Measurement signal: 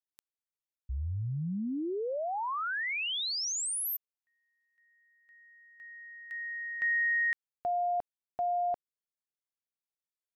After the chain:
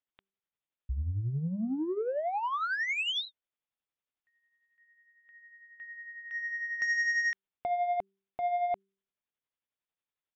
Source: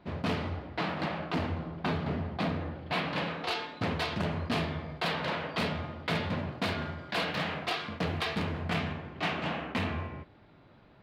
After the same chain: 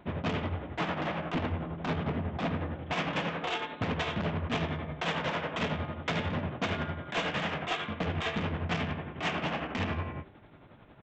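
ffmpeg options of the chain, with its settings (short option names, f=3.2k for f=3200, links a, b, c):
-af "aresample=8000,aresample=44100,aresample=16000,asoftclip=type=tanh:threshold=-29.5dB,aresample=44100,tremolo=f=11:d=0.5,bandreject=f=194.7:t=h:w=4,bandreject=f=389.4:t=h:w=4,volume=5.5dB"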